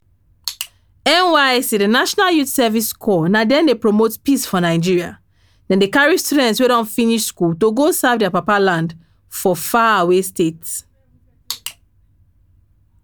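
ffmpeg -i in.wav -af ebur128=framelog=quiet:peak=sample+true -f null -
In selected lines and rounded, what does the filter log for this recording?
Integrated loudness:
  I:         -15.5 LUFS
  Threshold: -26.5 LUFS
Loudness range:
  LRA:         4.5 LU
  Threshold: -36.1 LUFS
  LRA low:   -19.0 LUFS
  LRA high:  -14.5 LUFS
Sample peak:
  Peak:       -1.1 dBFS
True peak:
  Peak:       -1.1 dBFS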